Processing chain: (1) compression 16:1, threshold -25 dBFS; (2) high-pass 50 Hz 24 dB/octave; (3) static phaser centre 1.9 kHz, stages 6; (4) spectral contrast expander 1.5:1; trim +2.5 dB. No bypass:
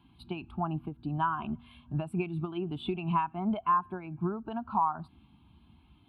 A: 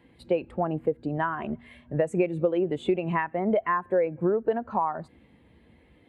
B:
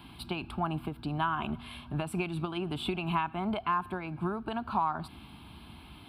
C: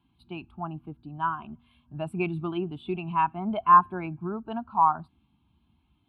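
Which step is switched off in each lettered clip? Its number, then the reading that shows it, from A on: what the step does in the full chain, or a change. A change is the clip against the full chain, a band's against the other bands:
3, 500 Hz band +14.0 dB; 4, 4 kHz band +8.0 dB; 1, mean gain reduction 4.0 dB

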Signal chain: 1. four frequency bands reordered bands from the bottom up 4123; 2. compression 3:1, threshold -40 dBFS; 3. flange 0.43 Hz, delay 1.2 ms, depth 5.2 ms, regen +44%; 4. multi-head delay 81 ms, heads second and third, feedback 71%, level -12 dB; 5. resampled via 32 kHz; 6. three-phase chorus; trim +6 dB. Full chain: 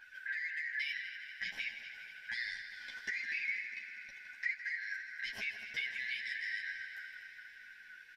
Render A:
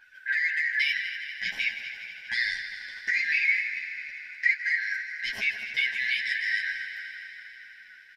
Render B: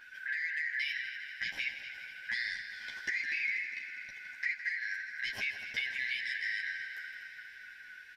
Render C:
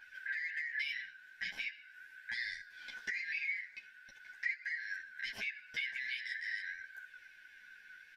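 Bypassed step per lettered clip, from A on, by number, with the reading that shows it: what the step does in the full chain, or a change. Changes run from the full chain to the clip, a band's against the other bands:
2, mean gain reduction 6.5 dB; 3, loudness change +3.5 LU; 4, momentary loudness spread change +6 LU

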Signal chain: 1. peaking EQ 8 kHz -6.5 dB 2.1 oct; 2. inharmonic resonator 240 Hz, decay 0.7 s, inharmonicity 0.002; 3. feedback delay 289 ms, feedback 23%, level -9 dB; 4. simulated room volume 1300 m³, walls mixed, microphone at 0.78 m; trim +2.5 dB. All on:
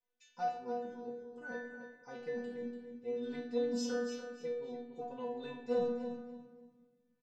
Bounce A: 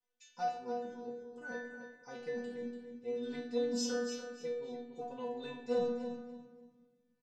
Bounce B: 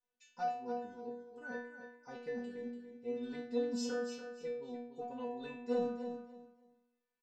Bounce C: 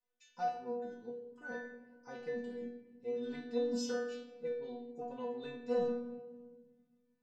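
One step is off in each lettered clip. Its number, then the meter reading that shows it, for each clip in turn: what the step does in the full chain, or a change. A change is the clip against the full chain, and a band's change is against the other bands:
1, 4 kHz band +4.5 dB; 4, echo-to-direct -4.5 dB to -9.0 dB; 3, echo-to-direct -4.5 dB to -7.0 dB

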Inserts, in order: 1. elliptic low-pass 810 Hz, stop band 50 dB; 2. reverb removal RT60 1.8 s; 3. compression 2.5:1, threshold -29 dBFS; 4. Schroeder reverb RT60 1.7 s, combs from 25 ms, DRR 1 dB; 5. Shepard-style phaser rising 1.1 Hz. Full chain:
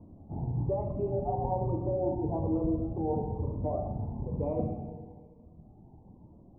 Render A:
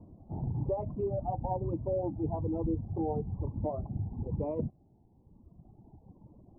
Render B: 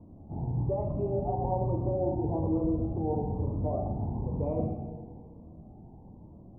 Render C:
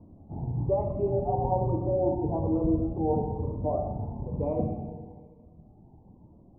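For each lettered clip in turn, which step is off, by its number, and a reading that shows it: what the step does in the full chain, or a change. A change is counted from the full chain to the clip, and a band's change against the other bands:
4, momentary loudness spread change -4 LU; 2, momentary loudness spread change +13 LU; 3, 125 Hz band -1.5 dB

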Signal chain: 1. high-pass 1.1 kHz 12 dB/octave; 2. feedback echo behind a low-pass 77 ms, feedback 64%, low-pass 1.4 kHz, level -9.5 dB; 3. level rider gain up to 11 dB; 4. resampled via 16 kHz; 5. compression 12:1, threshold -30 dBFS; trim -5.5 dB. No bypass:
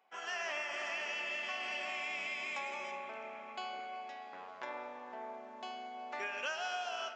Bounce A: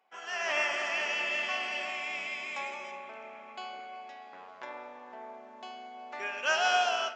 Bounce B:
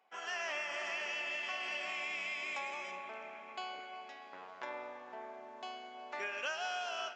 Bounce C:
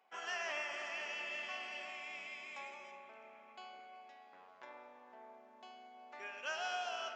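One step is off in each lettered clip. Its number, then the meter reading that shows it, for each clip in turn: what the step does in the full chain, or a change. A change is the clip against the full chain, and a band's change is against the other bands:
5, mean gain reduction 3.0 dB; 2, momentary loudness spread change +2 LU; 3, momentary loudness spread change +9 LU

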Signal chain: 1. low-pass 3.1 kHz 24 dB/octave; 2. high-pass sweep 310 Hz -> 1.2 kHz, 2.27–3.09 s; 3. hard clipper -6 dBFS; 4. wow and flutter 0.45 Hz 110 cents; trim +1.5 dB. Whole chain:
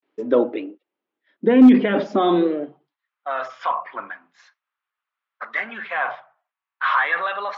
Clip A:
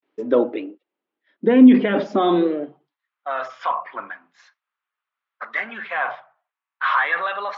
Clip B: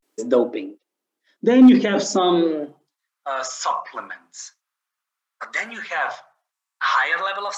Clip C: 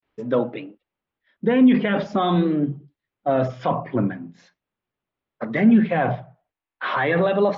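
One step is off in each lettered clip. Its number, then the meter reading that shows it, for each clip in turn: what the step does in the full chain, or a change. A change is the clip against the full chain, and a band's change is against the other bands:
3, distortion -25 dB; 1, 4 kHz band +6.5 dB; 2, 125 Hz band +12.5 dB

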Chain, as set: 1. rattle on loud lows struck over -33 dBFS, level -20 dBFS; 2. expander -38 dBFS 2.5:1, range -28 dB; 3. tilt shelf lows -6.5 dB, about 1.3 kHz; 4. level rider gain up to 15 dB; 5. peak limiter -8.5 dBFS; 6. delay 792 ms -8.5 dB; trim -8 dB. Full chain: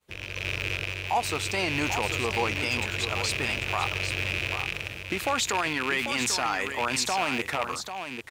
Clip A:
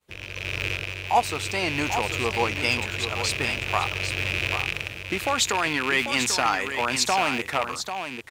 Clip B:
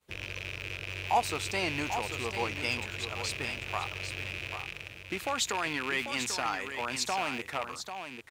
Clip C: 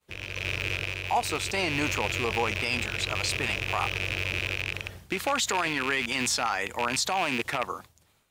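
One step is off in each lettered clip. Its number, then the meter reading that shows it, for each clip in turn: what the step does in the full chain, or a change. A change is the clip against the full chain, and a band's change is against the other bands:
5, mean gain reduction 1.5 dB; 4, momentary loudness spread change +2 LU; 6, crest factor change -2.0 dB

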